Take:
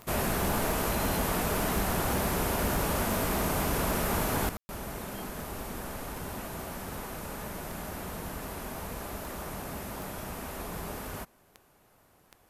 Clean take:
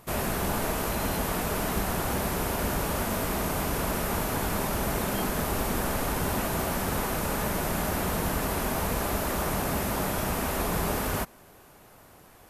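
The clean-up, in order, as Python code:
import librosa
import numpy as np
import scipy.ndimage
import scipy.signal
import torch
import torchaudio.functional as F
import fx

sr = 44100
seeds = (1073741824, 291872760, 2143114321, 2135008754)

y = fx.fix_declip(x, sr, threshold_db=-21.5)
y = fx.fix_declick_ar(y, sr, threshold=10.0)
y = fx.fix_ambience(y, sr, seeds[0], print_start_s=11.63, print_end_s=12.13, start_s=4.57, end_s=4.69)
y = fx.gain(y, sr, db=fx.steps((0.0, 0.0), (4.49, 10.0)))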